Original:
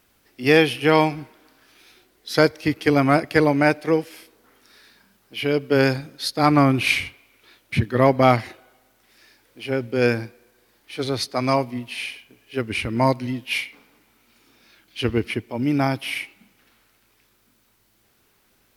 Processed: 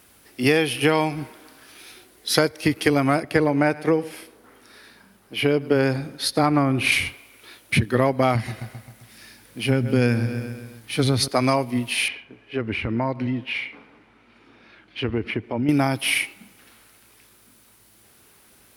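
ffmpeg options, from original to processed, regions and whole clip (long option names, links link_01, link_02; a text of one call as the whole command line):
ffmpeg -i in.wav -filter_complex "[0:a]asettb=1/sr,asplit=3[link_01][link_02][link_03];[link_01]atrim=end=3.234[link_04];[link_02]atrim=start=3.23:end=6.92,asetpts=PTS-STARTPTS,afade=type=in:duration=0.004:curve=qsin,afade=type=out:start_time=3.686:duration=0.004:curve=qsin,highshelf=frequency=2900:gain=-8.5,aecho=1:1:104:0.0891,atrim=end_sample=162729[link_05];[link_03]atrim=start=6.916[link_06];[link_04][link_05]acrossfade=duration=0.004:curve1=hsin:curve2=qsin[link_07];[link_07][link_06]acrossfade=duration=0.004:curve1=qsin:curve2=hsin,asettb=1/sr,asplit=3[link_08][link_09][link_10];[link_08]atrim=end=8.354[link_11];[link_09]atrim=start=8.35:end=11.28,asetpts=PTS-STARTPTS,afade=type=in:duration=0.004:curve=qsin,afade=type=out:start_time=2.926:duration=0.004:curve=qsin,lowshelf=frequency=270:width_type=q:width=1.5:gain=7,aecho=1:1:132|264|396|528|660:0.168|0.0907|0.049|0.0264|0.0143,atrim=end_sample=129213[link_12];[link_10]atrim=start=11.276[link_13];[link_11][link_12]acrossfade=duration=0.004:curve1=hsin:curve2=qsin[link_14];[link_14][link_13]acrossfade=duration=0.004:curve1=qsin:curve2=hsin,asettb=1/sr,asplit=3[link_15][link_16][link_17];[link_15]atrim=end=12.084[link_18];[link_16]atrim=start=12.08:end=15.69,asetpts=PTS-STARTPTS,afade=type=in:duration=0.004:curve=qsin,afade=type=out:start_time=3.606:duration=0.004:curve=qsin,acompressor=threshold=-29dB:ratio=3:attack=3.2:release=140:knee=1:detection=peak,lowpass=2400[link_19];[link_17]atrim=start=15.686[link_20];[link_18][link_19]acrossfade=duration=0.004:curve1=hsin:curve2=qsin[link_21];[link_21][link_20]acrossfade=duration=0.004:curve1=qsin:curve2=hsin,highpass=44,equalizer=frequency=10000:width=2.6:gain=9,acompressor=threshold=-23dB:ratio=5,volume=7dB" out.wav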